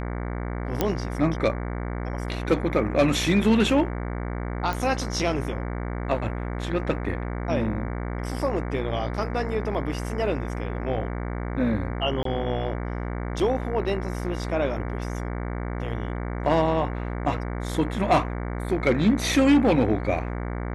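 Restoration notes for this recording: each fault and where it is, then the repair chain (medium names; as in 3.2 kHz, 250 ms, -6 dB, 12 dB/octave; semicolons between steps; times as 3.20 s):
buzz 60 Hz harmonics 38 -30 dBFS
0.81 s: pop -8 dBFS
4.73 s: pop
12.23–12.25 s: dropout 23 ms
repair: de-click; de-hum 60 Hz, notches 38; interpolate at 12.23 s, 23 ms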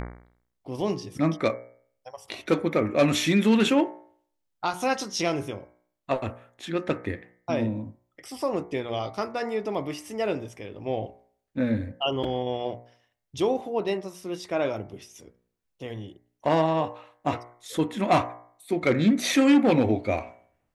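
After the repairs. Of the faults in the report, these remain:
nothing left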